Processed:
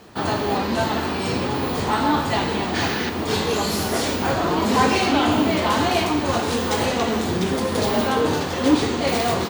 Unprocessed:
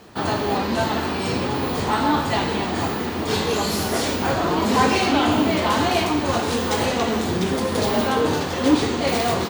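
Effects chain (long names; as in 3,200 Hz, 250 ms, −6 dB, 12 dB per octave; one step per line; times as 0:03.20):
gain on a spectral selection 0:02.74–0:03.09, 1,400–6,600 Hz +7 dB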